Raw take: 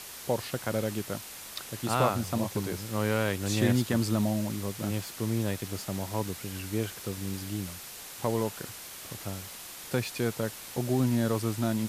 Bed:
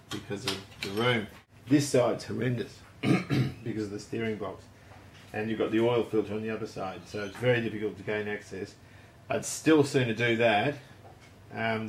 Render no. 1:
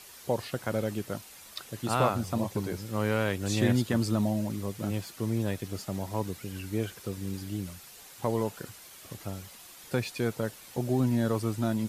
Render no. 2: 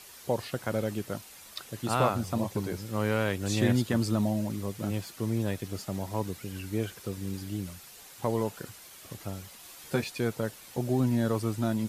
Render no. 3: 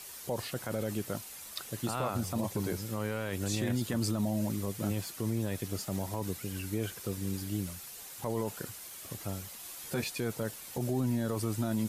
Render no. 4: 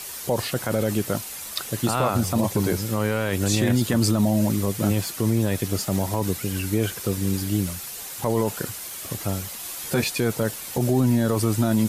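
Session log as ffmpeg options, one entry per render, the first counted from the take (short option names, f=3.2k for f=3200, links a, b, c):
-af "afftdn=nr=8:nf=-44"
-filter_complex "[0:a]asettb=1/sr,asplit=3[a][b][c];[a]atrim=end=9.624[d];[b]atrim=start=9.62:end=10.04,asetpts=PTS-STARTPTS,afade=t=in:d=0.004:c=qsin,afade=t=out:st=0.416:d=0.004:c=qsin,asplit=2[e][f];[f]adelay=13,volume=-4dB[g];[e][g]amix=inputs=2:normalize=0,atrim=end_sample=18522[h];[c]atrim=start=10.036[i];[d][h]acrossfade=d=0.004:c1=hsin:c2=qsin[j];[j][i]acrossfade=d=0.004:c1=qsin:c2=hsin"
-filter_complex "[0:a]acrossover=split=6800[a][b];[b]acontrast=32[c];[a][c]amix=inputs=2:normalize=0,alimiter=limit=-22.5dB:level=0:latency=1:release=25"
-af "volume=11dB"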